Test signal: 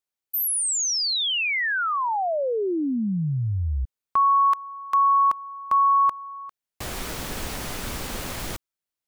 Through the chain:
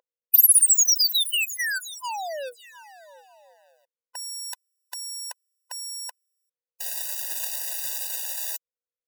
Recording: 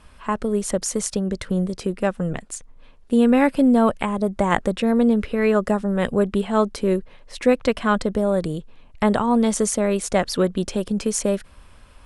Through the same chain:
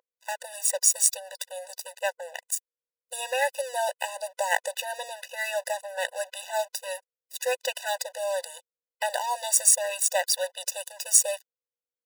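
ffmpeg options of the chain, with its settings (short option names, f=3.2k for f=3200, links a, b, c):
-af "aeval=exprs='sgn(val(0))*max(abs(val(0))-0.02,0)':c=same,crystalizer=i=8:c=0,aeval=exprs='val(0)+0.0178*(sin(2*PI*60*n/s)+sin(2*PI*2*60*n/s)/2+sin(2*PI*3*60*n/s)/3+sin(2*PI*4*60*n/s)/4+sin(2*PI*5*60*n/s)/5)':c=same,afftfilt=real='re*eq(mod(floor(b*sr/1024/500),2),1)':imag='im*eq(mod(floor(b*sr/1024/500),2),1)':win_size=1024:overlap=0.75,volume=-6.5dB"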